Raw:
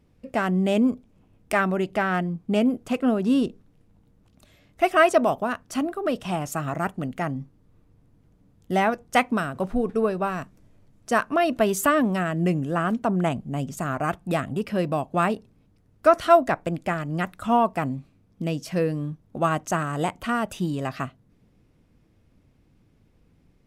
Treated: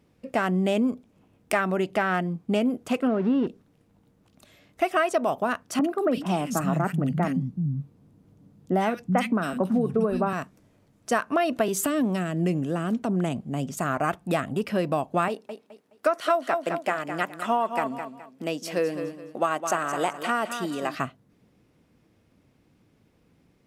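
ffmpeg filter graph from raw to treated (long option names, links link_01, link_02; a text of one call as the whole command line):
ffmpeg -i in.wav -filter_complex "[0:a]asettb=1/sr,asplit=3[link_01][link_02][link_03];[link_01]atrim=end=3.074[link_04];[link_02]atrim=start=3.07:end=3.47,asetpts=PTS-STARTPTS,afade=type=in:duration=0.004:curve=qsin,afade=type=out:start_time=0.396:duration=0.004:curve=qsin,aeval=exprs='val(0)+0.5*0.0237*sgn(val(0))':channel_layout=same,lowpass=1900[link_05];[link_03]atrim=start=3.466[link_06];[link_04][link_05]acrossfade=duration=0.004:curve1=hsin:curve2=qsin[link_07];[link_07][link_06]acrossfade=duration=0.004:curve1=qsin:curve2=hsin,asettb=1/sr,asplit=3[link_08][link_09][link_10];[link_08]atrim=end=5.794[link_11];[link_09]atrim=start=5.79:end=10.33,asetpts=PTS-STARTPTS,afade=type=in:duration=0.004:curve=qsin,afade=type=out:start_time=4.536:duration=0.004:curve=qsin,equalizer=frequency=170:width=0.92:gain=11.5,acrossover=split=190|1900[link_12][link_13][link_14];[link_14]adelay=50[link_15];[link_12]adelay=380[link_16];[link_16][link_13][link_15]amix=inputs=3:normalize=0,atrim=end_sample=200214[link_17];[link_10]atrim=start=10.326[link_18];[link_11][link_17]acrossfade=duration=0.004:curve1=hsin:curve2=qsin[link_19];[link_19][link_18]acrossfade=duration=0.004:curve1=qsin:curve2=hsin,asettb=1/sr,asplit=3[link_20][link_21][link_22];[link_20]atrim=end=11.684[link_23];[link_21]atrim=start=11.68:end=13.76,asetpts=PTS-STARTPTS,afade=type=in:duration=0.004:curve=qsin,afade=type=out:start_time=2.076:duration=0.004:curve=qsin,highshelf=frequency=12000:gain=-4,acrossover=split=470|3000[link_24][link_25][link_26];[link_25]acompressor=threshold=-35dB:ratio=6:attack=3.2:release=140:knee=2.83:detection=peak[link_27];[link_24][link_27][link_26]amix=inputs=3:normalize=0[link_28];[link_22]atrim=start=13.756[link_29];[link_23][link_28]acrossfade=duration=0.004:curve1=hsin:curve2=qsin[link_30];[link_30][link_29]acrossfade=duration=0.004:curve1=qsin:curve2=hsin,asettb=1/sr,asplit=3[link_31][link_32][link_33];[link_31]atrim=end=15.284[link_34];[link_32]atrim=start=15.28:end=20.95,asetpts=PTS-STARTPTS,afade=type=in:duration=0.004:curve=qsin,afade=type=out:start_time=5.666:duration=0.004:curve=qsin,highpass=300,aecho=1:1:210|420|630:0.299|0.0866|0.0251,atrim=end_sample=250047[link_35];[link_33]atrim=start=20.946[link_36];[link_34][link_35]acrossfade=duration=0.004:curve1=hsin:curve2=qsin[link_37];[link_37][link_36]acrossfade=duration=0.004:curve1=qsin:curve2=hsin,highpass=frequency=190:poles=1,acompressor=threshold=-22dB:ratio=6,volume=2.5dB" out.wav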